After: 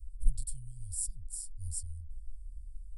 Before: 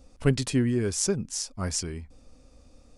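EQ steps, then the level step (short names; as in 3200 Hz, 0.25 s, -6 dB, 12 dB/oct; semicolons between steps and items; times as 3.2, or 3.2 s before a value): running mean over 7 samples; inverse Chebyshev band-stop 260–1900 Hz, stop band 80 dB; +13.5 dB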